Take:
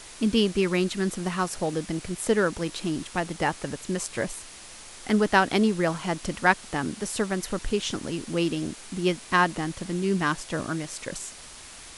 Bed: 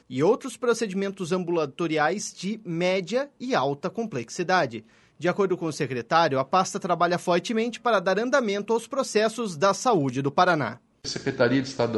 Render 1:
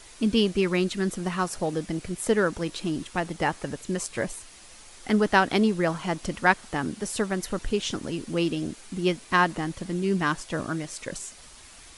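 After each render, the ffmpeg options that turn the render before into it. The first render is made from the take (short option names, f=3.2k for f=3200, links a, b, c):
-af "afftdn=nr=6:nf=-45"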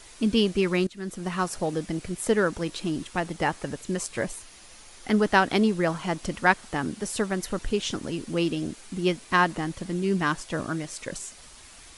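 -filter_complex "[0:a]asettb=1/sr,asplit=3[a][b][c];[a]atrim=end=4.384[d];[b]atrim=start=4.38:end=5.17,asetpts=PTS-STARTPTS,afade=t=in:d=0.004:c=qsin,afade=t=out:st=0.786:d=0.004:c=qsin,bandreject=f=8k:w=10[e];[c]atrim=start=5.166[f];[d][e]acrossfade=d=0.004:c1=hsin:c2=qsin[g];[g][f]acrossfade=d=0.004:c1=qsin:c2=hsin,asplit=2[h][i];[h]atrim=end=0.87,asetpts=PTS-STARTPTS,afade=t=out:st=0.866:d=0.004:c=hsin:silence=0.112202[j];[i]atrim=start=0.87,asetpts=PTS-STARTPTS,afade=t=in:d=0.51:silence=0.112202[k];[j][k]concat=n=2:v=0:a=1"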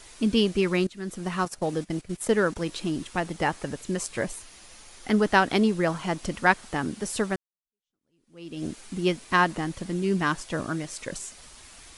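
-filter_complex "[0:a]asettb=1/sr,asplit=3[a][b][c];[a]atrim=end=1.454[d];[b]atrim=start=1.45:end=2.56,asetpts=PTS-STARTPTS,afade=t=in:d=0.004:c=qsin,afade=t=out:st=1.106:d=0.004:c=qsin,agate=range=-13dB:threshold=-35dB:ratio=16:release=100:detection=peak[e];[c]atrim=start=2.556[f];[d][e]acrossfade=d=0.004:c1=hsin:c2=qsin[g];[g][f]acrossfade=d=0.004:c1=qsin:c2=hsin,asplit=2[h][i];[h]atrim=end=7.36,asetpts=PTS-STARTPTS,afade=t=out:st=7.356:d=0.004:c=hsin[j];[i]atrim=start=7.36,asetpts=PTS-STARTPTS,afade=t=in:d=1.29:c=exp[k];[j][k]concat=n=2:v=0:a=1"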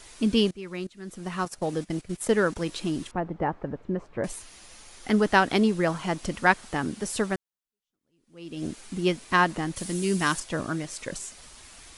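-filter_complex "[0:a]asettb=1/sr,asplit=3[a][b][c];[a]atrim=end=3.114[d];[b]atrim=start=3.11:end=4.24,asetpts=PTS-STARTPTS,afade=t=in:d=0.004:c=qsin,afade=t=out:st=1.126:d=0.004:c=qsin,lowpass=1.1k[e];[c]atrim=start=4.236[f];[d][e]acrossfade=d=0.004:c1=hsin:c2=qsin[g];[g][f]acrossfade=d=0.004:c1=qsin:c2=hsin,asettb=1/sr,asplit=3[h][i][j];[h]atrim=end=9.764[k];[i]atrim=start=9.76:end=10.4,asetpts=PTS-STARTPTS,afade=t=in:d=0.004:c=qsin,afade=t=out:st=0.636:d=0.004:c=qsin,aemphasis=mode=production:type=75fm[l];[j]atrim=start=10.396[m];[k][l]acrossfade=d=0.004:c1=hsin:c2=qsin[n];[n][m]acrossfade=d=0.004:c1=qsin:c2=hsin,asplit=2[o][p];[o]atrim=end=0.51,asetpts=PTS-STARTPTS,afade=t=out:st=0.506:d=0.004:c=hsin:silence=0.0891251[q];[p]atrim=start=0.51,asetpts=PTS-STARTPTS,afade=t=in:d=1.69:c=qsin:silence=0.0891251[r];[q][r]concat=n=2:v=0:a=1"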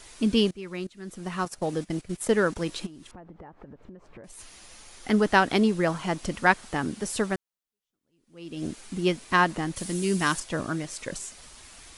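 -filter_complex "[0:a]asplit=3[a][b][c];[a]afade=t=out:st=2.85:d=0.02[d];[b]acompressor=threshold=-41dB:ratio=16:attack=3.2:release=140:knee=1:detection=peak,afade=t=in:st=2.85:d=0.02,afade=t=out:st=4.38:d=0.02[e];[c]afade=t=in:st=4.38:d=0.02[f];[d][e][f]amix=inputs=3:normalize=0"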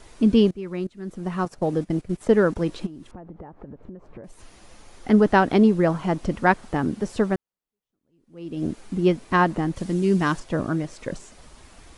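-filter_complex "[0:a]tiltshelf=f=1.4k:g=6.5,acrossover=split=7500[a][b];[b]acompressor=threshold=-58dB:ratio=4:attack=1:release=60[c];[a][c]amix=inputs=2:normalize=0"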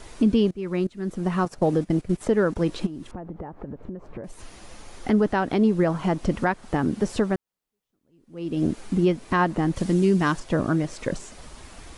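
-filter_complex "[0:a]asplit=2[a][b];[b]acompressor=threshold=-25dB:ratio=6,volume=-3dB[c];[a][c]amix=inputs=2:normalize=0,alimiter=limit=-11dB:level=0:latency=1:release=308"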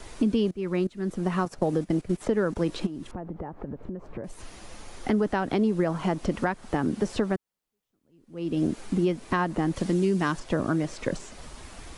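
-filter_complex "[0:a]acrossover=split=190|6100[a][b][c];[a]acompressor=threshold=-34dB:ratio=4[d];[b]acompressor=threshold=-22dB:ratio=4[e];[c]acompressor=threshold=-50dB:ratio=4[f];[d][e][f]amix=inputs=3:normalize=0"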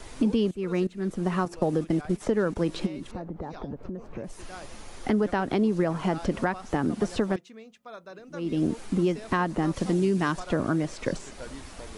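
-filter_complex "[1:a]volume=-21.5dB[a];[0:a][a]amix=inputs=2:normalize=0"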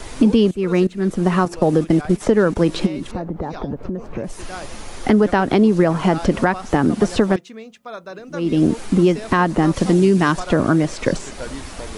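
-af "volume=10dB,alimiter=limit=-3dB:level=0:latency=1"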